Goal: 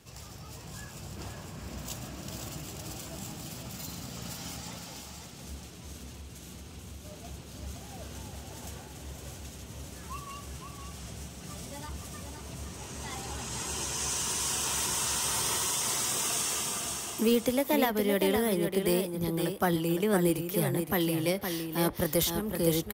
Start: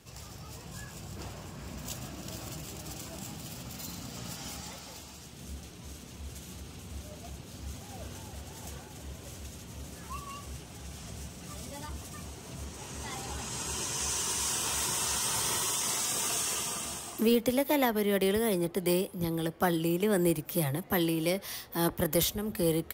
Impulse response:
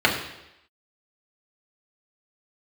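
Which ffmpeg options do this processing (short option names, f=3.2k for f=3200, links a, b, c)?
-filter_complex "[0:a]asettb=1/sr,asplit=3[a][b][c];[a]atrim=end=6.074[d];[b]atrim=start=6.07:end=7.05,asetpts=PTS-STARTPTS,afade=t=in:d=0.004:c=qsin,afade=t=out:st=0.976:d=0.004:c=qsin,acompressor=threshold=-42dB:ratio=6[e];[c]atrim=start=7.046[f];[d][e]acrossfade=d=0.004:c1=hsin:c2=qsin[g];[g][f]acrossfade=d=0.004:c1=qsin:c2=hsin,aecho=1:1:513:0.473"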